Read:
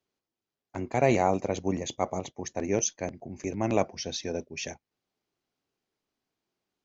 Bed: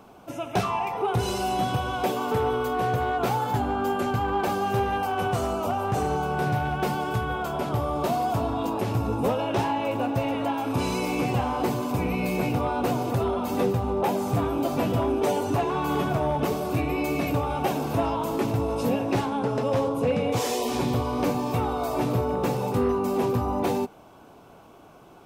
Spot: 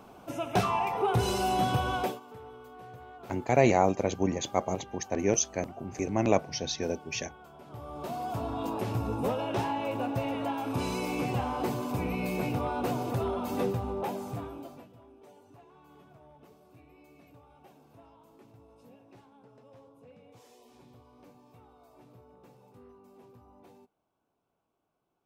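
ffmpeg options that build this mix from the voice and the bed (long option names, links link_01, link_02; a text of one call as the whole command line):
ffmpeg -i stem1.wav -i stem2.wav -filter_complex "[0:a]adelay=2550,volume=1dB[link_01];[1:a]volume=15.5dB,afade=type=out:start_time=1.96:duration=0.24:silence=0.0891251,afade=type=in:start_time=7.64:duration=1.07:silence=0.141254,afade=type=out:start_time=13.62:duration=1.26:silence=0.0530884[link_02];[link_01][link_02]amix=inputs=2:normalize=0" out.wav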